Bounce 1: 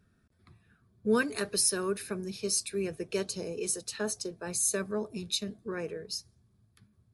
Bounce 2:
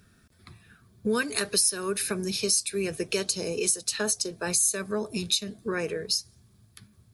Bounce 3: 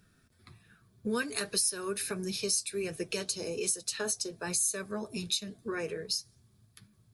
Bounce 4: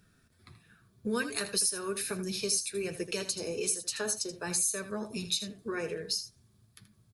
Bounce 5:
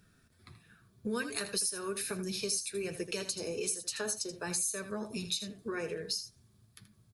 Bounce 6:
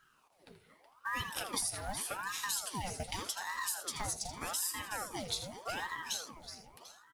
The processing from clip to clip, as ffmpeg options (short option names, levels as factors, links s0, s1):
-af "highshelf=f=2000:g=9.5,acompressor=threshold=0.0224:ratio=3,volume=2.37"
-af "flanger=delay=6:depth=2.3:regen=-51:speed=1.3:shape=sinusoidal,volume=0.841"
-af "aecho=1:1:80:0.266"
-af "acompressor=threshold=0.0158:ratio=1.5"
-af "acrusher=bits=6:mode=log:mix=0:aa=0.000001,aecho=1:1:372|744|1116|1488|1860:0.299|0.134|0.0605|0.0272|0.0122,aeval=exprs='val(0)*sin(2*PI*870*n/s+870*0.7/0.84*sin(2*PI*0.84*n/s))':c=same"